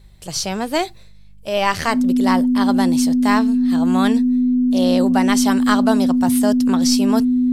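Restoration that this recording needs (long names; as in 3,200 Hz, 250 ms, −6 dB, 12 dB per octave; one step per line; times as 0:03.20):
hum removal 50.4 Hz, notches 4
notch filter 250 Hz, Q 30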